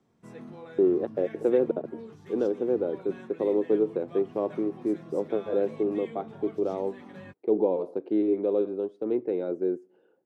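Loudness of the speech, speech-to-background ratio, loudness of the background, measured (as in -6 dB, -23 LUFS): -28.5 LUFS, 17.0 dB, -45.5 LUFS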